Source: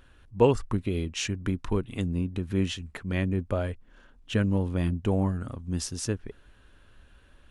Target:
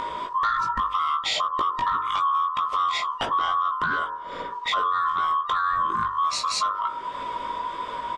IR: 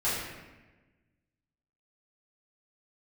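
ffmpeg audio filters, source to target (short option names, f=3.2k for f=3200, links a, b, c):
-filter_complex "[0:a]afftfilt=real='real(if(lt(b,960),b+48*(1-2*mod(floor(b/48),2)),b),0)':imag='imag(if(lt(b,960),b+48*(1-2*mod(floor(b/48),2)),b),0)':win_size=2048:overlap=0.75,asetrate=40517,aresample=44100,asplit=2[a][b];[b]acompressor=mode=upward:threshold=-30dB:ratio=2.5,volume=3dB[c];[a][c]amix=inputs=2:normalize=0,bandreject=f=49.44:t=h:w=4,bandreject=f=98.88:t=h:w=4,bandreject=f=148.32:t=h:w=4,bandreject=f=197.76:t=h:w=4,bandreject=f=247.2:t=h:w=4,bandreject=f=296.64:t=h:w=4,bandreject=f=346.08:t=h:w=4,bandreject=f=395.52:t=h:w=4,bandreject=f=444.96:t=h:w=4,bandreject=f=494.4:t=h:w=4,bandreject=f=543.84:t=h:w=4,bandreject=f=593.28:t=h:w=4,bandreject=f=642.72:t=h:w=4,bandreject=f=692.16:t=h:w=4,bandreject=f=741.6:t=h:w=4,bandreject=f=791.04:t=h:w=4,bandreject=f=840.48:t=h:w=4,bandreject=f=889.92:t=h:w=4,bandreject=f=939.36:t=h:w=4,bandreject=f=988.8:t=h:w=4,bandreject=f=1.03824k:t=h:w=4,bandreject=f=1.08768k:t=h:w=4,bandreject=f=1.13712k:t=h:w=4,bandreject=f=1.18656k:t=h:w=4,bandreject=f=1.236k:t=h:w=4,bandreject=f=1.28544k:t=h:w=4,bandreject=f=1.33488k:t=h:w=4,bandreject=f=1.38432k:t=h:w=4,bandreject=f=1.43376k:t=h:w=4,bandreject=f=1.4832k:t=h:w=4,bandreject=f=1.53264k:t=h:w=4,bandreject=f=1.58208k:t=h:w=4,bandreject=f=1.63152k:t=h:w=4,bandreject=f=1.68096k:t=h:w=4,bandreject=f=1.7304k:t=h:w=4,bandreject=f=1.77984k:t=h:w=4,bandreject=f=1.82928k:t=h:w=4,acompressor=threshold=-25dB:ratio=6,aeval=exprs='0.224*sin(PI/2*1.78*val(0)/0.224)':c=same,lowpass=5k,asplit=2[d][e];[e]adelay=18,volume=-4dB[f];[d][f]amix=inputs=2:normalize=0,alimiter=limit=-14dB:level=0:latency=1:release=31,volume=-2.5dB"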